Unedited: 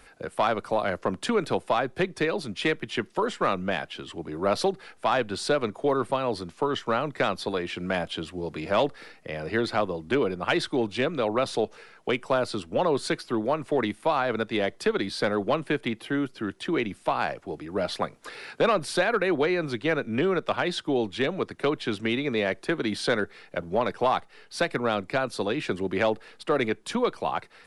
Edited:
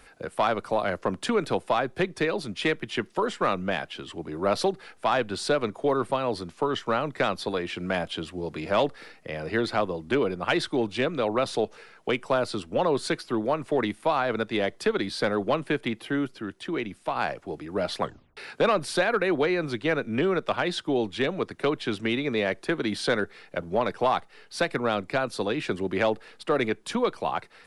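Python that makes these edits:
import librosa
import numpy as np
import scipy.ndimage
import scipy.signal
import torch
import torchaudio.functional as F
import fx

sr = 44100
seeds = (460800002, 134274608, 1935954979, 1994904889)

y = fx.edit(x, sr, fx.clip_gain(start_s=16.38, length_s=0.78, db=-3.5),
    fx.tape_stop(start_s=18.02, length_s=0.35), tone=tone)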